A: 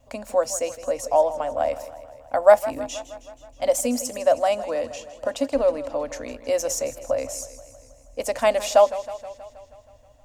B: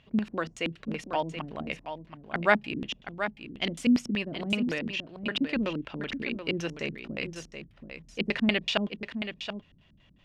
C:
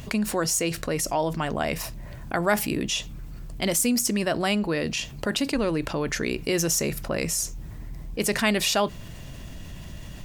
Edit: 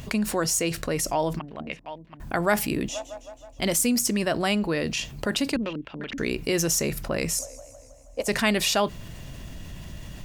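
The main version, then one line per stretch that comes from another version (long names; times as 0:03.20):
C
0:01.39–0:02.20: punch in from B
0:02.89–0:03.59: punch in from A
0:05.56–0:06.18: punch in from B
0:07.39–0:08.28: punch in from A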